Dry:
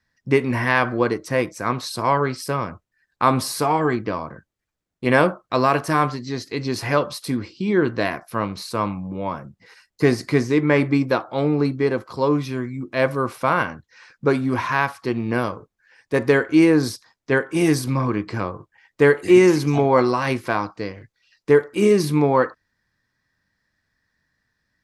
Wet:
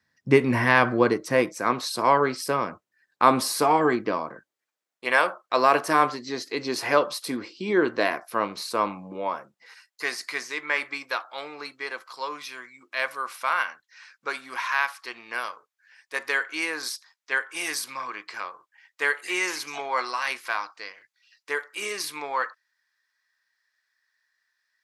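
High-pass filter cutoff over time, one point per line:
0:00.88 110 Hz
0:01.68 250 Hz
0:04.17 250 Hz
0:05.20 900 Hz
0:05.77 350 Hz
0:09.09 350 Hz
0:10.09 1,300 Hz

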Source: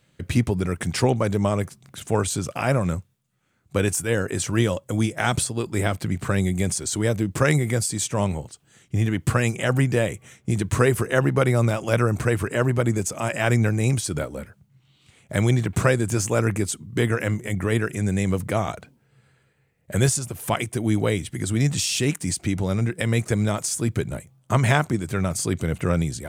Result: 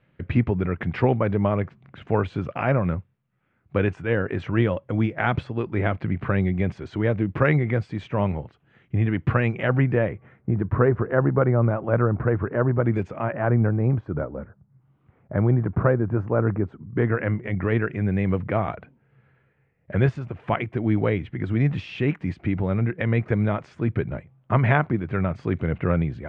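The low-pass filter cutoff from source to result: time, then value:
low-pass filter 24 dB per octave
0:09.67 2,500 Hz
0:10.53 1,500 Hz
0:12.80 1,500 Hz
0:12.96 3,000 Hz
0:13.41 1,400 Hz
0:16.66 1,400 Hz
0:17.47 2,400 Hz

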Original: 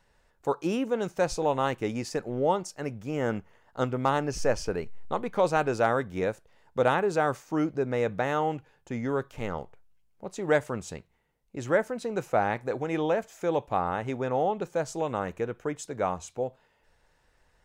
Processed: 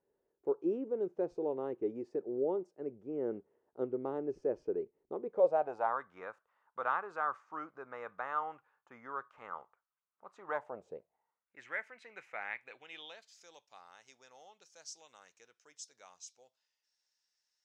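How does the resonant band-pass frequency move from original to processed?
resonant band-pass, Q 4.3
0:05.21 380 Hz
0:06.04 1,200 Hz
0:10.48 1,200 Hz
0:10.92 450 Hz
0:11.65 2,100 Hz
0:12.51 2,100 Hz
0:13.49 5,500 Hz

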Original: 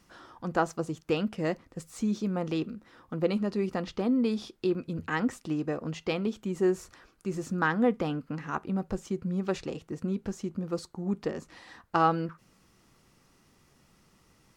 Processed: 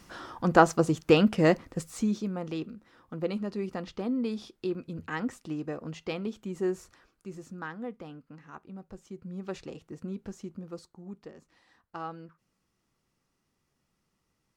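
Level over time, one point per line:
0:01.67 +8 dB
0:02.37 −4 dB
0:06.78 −4 dB
0:07.80 −13.5 dB
0:08.88 −13.5 dB
0:09.58 −6 dB
0:10.45 −6 dB
0:11.30 −14.5 dB

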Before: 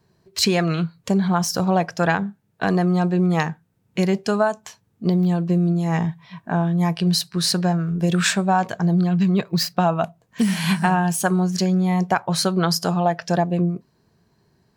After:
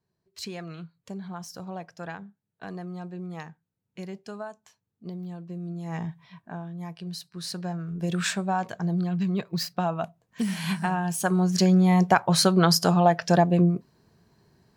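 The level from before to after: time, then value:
0:05.52 −18 dB
0:06.25 −7 dB
0:06.61 −17 dB
0:07.20 −17 dB
0:08.11 −8 dB
0:11.02 −8 dB
0:11.66 +0.5 dB

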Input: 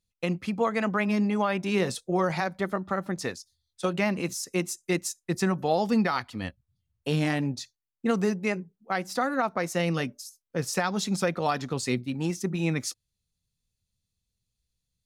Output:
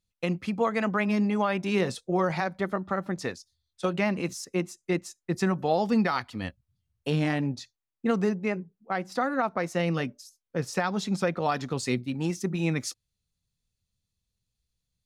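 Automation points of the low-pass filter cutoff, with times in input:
low-pass filter 6 dB per octave
8,300 Hz
from 0:01.81 4,700 Hz
from 0:04.45 2,100 Hz
from 0:05.33 5,100 Hz
from 0:05.96 10,000 Hz
from 0:07.10 3,700 Hz
from 0:08.29 2,000 Hz
from 0:09.12 3,400 Hz
from 0:11.52 9,100 Hz

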